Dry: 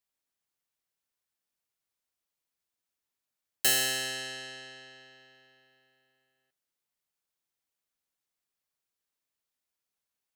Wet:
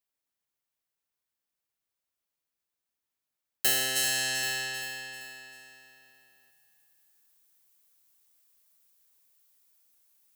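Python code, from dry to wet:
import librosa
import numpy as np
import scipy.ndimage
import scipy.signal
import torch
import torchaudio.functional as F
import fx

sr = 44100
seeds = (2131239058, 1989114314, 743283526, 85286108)

y = fx.high_shelf(x, sr, hz=5300.0, db=fx.steps((0.0, -4.5), (3.95, 9.0)))
y = fx.echo_feedback(y, sr, ms=391, feedback_pct=42, wet_db=-14.0)
y = fx.rider(y, sr, range_db=5, speed_s=0.5)
y = fx.high_shelf(y, sr, hz=11000.0, db=7.5)
y = y * 10.0 ** (3.0 / 20.0)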